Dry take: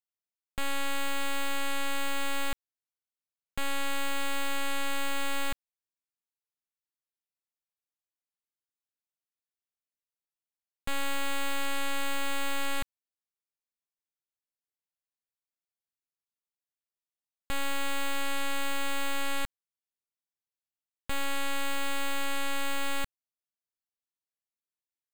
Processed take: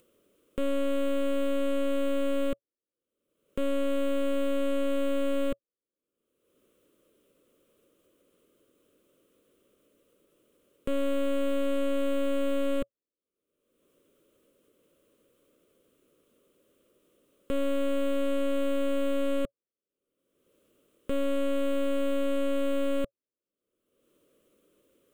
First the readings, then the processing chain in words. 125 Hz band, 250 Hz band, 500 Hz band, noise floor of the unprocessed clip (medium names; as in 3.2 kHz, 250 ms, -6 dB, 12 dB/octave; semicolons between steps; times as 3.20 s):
no reading, +11.5 dB, +13.0 dB, under -85 dBFS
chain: FFT filter 120 Hz 0 dB, 310 Hz +14 dB, 560 Hz +14 dB, 800 Hz -17 dB, 1.2 kHz 0 dB, 1.8 kHz -12 dB, 3.1 kHz -4 dB, 4.6 kHz -18 dB, 9.2 kHz -9 dB, 13 kHz -11 dB; upward compressor, threshold -42 dBFS; trim -1 dB